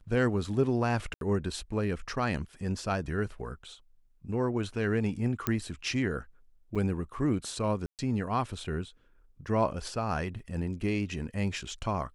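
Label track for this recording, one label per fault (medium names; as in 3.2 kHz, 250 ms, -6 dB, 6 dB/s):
1.140000	1.210000	dropout 72 ms
5.470000	5.470000	pop -12 dBFS
6.750000	6.760000	dropout 6.1 ms
7.860000	7.990000	dropout 128 ms
10.390000	10.390000	dropout 3.6 ms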